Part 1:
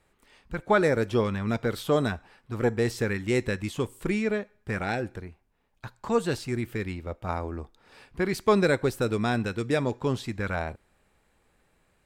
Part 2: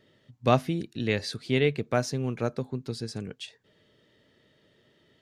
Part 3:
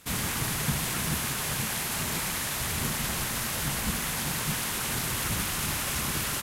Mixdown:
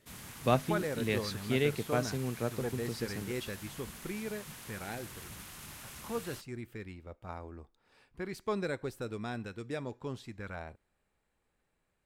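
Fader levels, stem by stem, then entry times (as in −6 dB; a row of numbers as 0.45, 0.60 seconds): −12.5, −5.5, −18.0 decibels; 0.00, 0.00, 0.00 seconds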